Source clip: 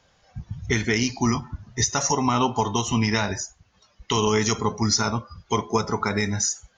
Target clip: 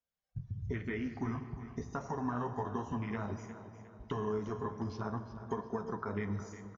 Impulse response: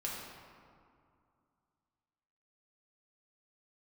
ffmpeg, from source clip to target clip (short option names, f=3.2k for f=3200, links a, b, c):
-filter_complex "[0:a]agate=range=-17dB:threshold=-51dB:ratio=16:detection=peak,afwtdn=0.0562,acrossover=split=2500[a][b];[b]acompressor=threshold=-49dB:ratio=4:attack=1:release=60[c];[a][c]amix=inputs=2:normalize=0,bandreject=f=860:w=16,acompressor=threshold=-36dB:ratio=3,flanger=delay=4.1:depth=8.3:regen=-41:speed=0.53:shape=sinusoidal,aecho=1:1:358|716|1074|1432:0.224|0.094|0.0395|0.0166,asplit=2[d][e];[1:a]atrim=start_sample=2205,asetrate=29547,aresample=44100[f];[e][f]afir=irnorm=-1:irlink=0,volume=-11.5dB[g];[d][g]amix=inputs=2:normalize=0,aresample=16000,aresample=44100"